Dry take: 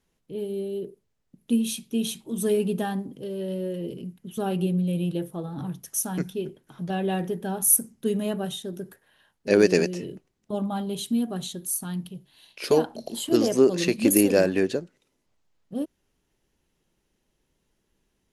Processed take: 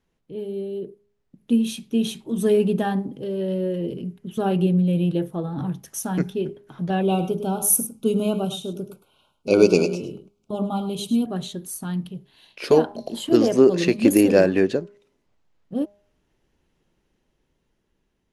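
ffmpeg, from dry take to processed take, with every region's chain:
ffmpeg -i in.wav -filter_complex "[0:a]asettb=1/sr,asplit=3[link_01][link_02][link_03];[link_01]atrim=end=7.014[link_04];[link_02]atrim=start=7.01:end=11.26,asetpts=PTS-STARTPTS,afade=type=in:duration=0.004:curve=qsin,afade=type=out:start_time=4.246:duration=0.004:curve=qsin,asuperstop=centerf=1800:order=12:qfactor=2.5,highshelf=frequency=4700:gain=6,aecho=1:1:104:0.251,atrim=end_sample=187425[link_05];[link_03]atrim=start=11.256[link_06];[link_04][link_05]acrossfade=duration=0.004:curve1=hsin:curve2=qsin[link_07];[link_07][link_06]acrossfade=duration=0.004:curve1=qsin:curve2=hsin,lowpass=frequency=3000:poles=1,bandreject=frequency=203.8:width_type=h:width=4,bandreject=frequency=407.6:width_type=h:width=4,bandreject=frequency=611.4:width_type=h:width=4,bandreject=frequency=815.2:width_type=h:width=4,bandreject=frequency=1019:width_type=h:width=4,bandreject=frequency=1222.8:width_type=h:width=4,dynaudnorm=framelen=430:gausssize=7:maxgain=4.5dB,volume=1dB" out.wav

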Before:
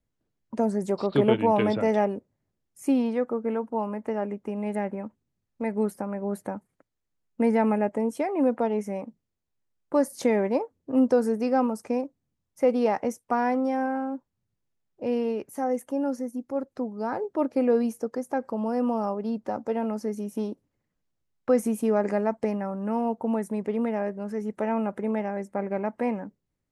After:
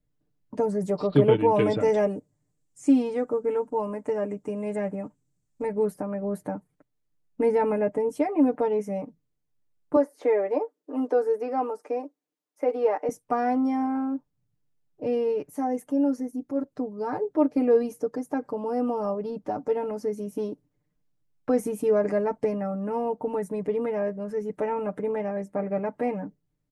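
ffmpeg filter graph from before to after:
ffmpeg -i in.wav -filter_complex "[0:a]asettb=1/sr,asplit=3[link_01][link_02][link_03];[link_01]atrim=end=1.544[link_04];[link_02]atrim=start=1.54:end=5.67,asetpts=PTS-STARTPTS,afade=type=in:duration=0.004:curve=qsin,afade=type=out:start_time=4.126:duration=0.004:curve=qsin,equalizer=frequency=7700:width_type=o:width=0.72:gain=15,acrossover=split=7100[link_05][link_06];[link_06]acompressor=threshold=-58dB:ratio=4:attack=1:release=60[link_07];[link_05][link_07]amix=inputs=2:normalize=0[link_08];[link_03]atrim=start=5.666[link_09];[link_04][link_08]acrossfade=duration=0.004:curve1=hsin:curve2=qsin[link_10];[link_10][link_09]acrossfade=duration=0.004:curve1=qsin:curve2=hsin,asettb=1/sr,asplit=3[link_11][link_12][link_13];[link_11]atrim=end=9.964[link_14];[link_12]atrim=start=9.96:end=13.09,asetpts=PTS-STARTPTS,afade=type=in:duration=0.004:curve=qsin,afade=type=out:start_time=3.126:duration=0.004:curve=qsin,highpass=frequency=340:width=0.5412,highpass=frequency=340:width=1.3066,acrossover=split=2600[link_15][link_16];[link_16]acompressor=threshold=-58dB:ratio=4:attack=1:release=60[link_17];[link_15][link_17]amix=inputs=2:normalize=0[link_18];[link_13]atrim=start=13.086[link_19];[link_14][link_18]acrossfade=duration=0.004:curve1=hsin:curve2=qsin[link_20];[link_20][link_19]acrossfade=duration=0.004:curve1=qsin:curve2=hsin,lowshelf=frequency=490:gain=7.5,aecho=1:1:6.7:0.84,volume=-5dB" out.wav

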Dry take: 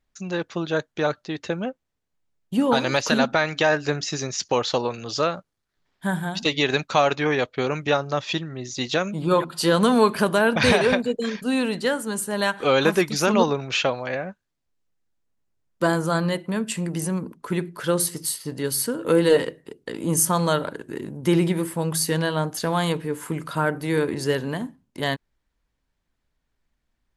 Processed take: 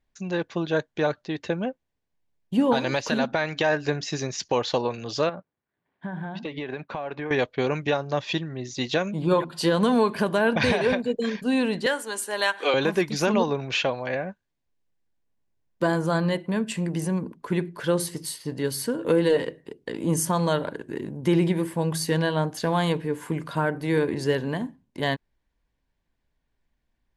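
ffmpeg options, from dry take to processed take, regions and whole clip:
ffmpeg -i in.wav -filter_complex "[0:a]asettb=1/sr,asplit=3[link_01][link_02][link_03];[link_01]atrim=end=5.294[link_04];[link_02]atrim=start=5.29:end=7.31,asetpts=PTS-STARTPTS,afade=type=in:duration=0.004:curve=qsin,afade=type=out:start_time=2.016:duration=0.004:curve=qsin,highpass=120,lowpass=2100,acompressor=threshold=-28dB:ratio=6:attack=3.2:release=140:knee=1:detection=peak[link_05];[link_03]atrim=start=7.306[link_06];[link_04][link_05]acrossfade=duration=0.004:curve1=hsin:curve2=qsin[link_07];[link_07][link_06]acrossfade=duration=0.004:curve1=qsin:curve2=hsin,asettb=1/sr,asplit=3[link_08][link_09][link_10];[link_08]atrim=end=11.864[link_11];[link_09]atrim=start=11.86:end=12.74,asetpts=PTS-STARTPTS,afade=type=in:duration=0.004:curve=qsin,afade=type=out:start_time=0.876:duration=0.004:curve=qsin,highpass=frequency=290:width=0.5412,highpass=frequency=290:width=1.3066,tiltshelf=frequency=870:gain=-5[link_12];[link_10]atrim=start=12.736[link_13];[link_11][link_12]acrossfade=duration=0.004:curve1=hsin:curve2=qsin[link_14];[link_14][link_13]acrossfade=duration=0.004:curve1=qsin:curve2=hsin,highshelf=frequency=6500:gain=-11,bandreject=frequency=1300:width=6.9,alimiter=limit=-11.5dB:level=0:latency=1:release=228" out.wav

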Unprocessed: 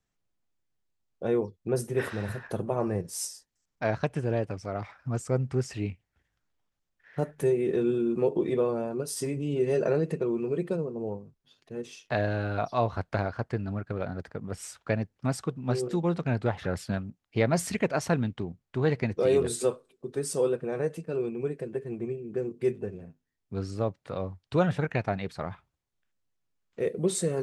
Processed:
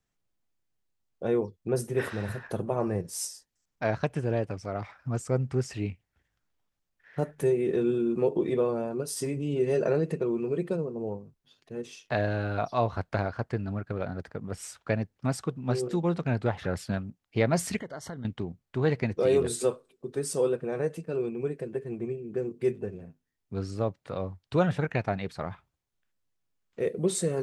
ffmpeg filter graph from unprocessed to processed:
ffmpeg -i in.wav -filter_complex "[0:a]asettb=1/sr,asplit=3[link_01][link_02][link_03];[link_01]atrim=end=17.804[link_04];[link_02]atrim=start=17.8:end=18.25,asetpts=PTS-STARTPTS,afade=type=in:duration=0.004:curve=qsin,afade=type=out:start_time=0.446:duration=0.004:curve=qsin,acompressor=threshold=-37dB:ratio=4:attack=3.2:release=140:knee=1:detection=peak,asuperstop=centerf=2500:order=20:qfactor=3.8[link_05];[link_03]atrim=start=18.246[link_06];[link_04][link_05]acrossfade=duration=0.004:curve1=hsin:curve2=qsin[link_07];[link_07][link_06]acrossfade=duration=0.004:curve1=qsin:curve2=hsin" out.wav

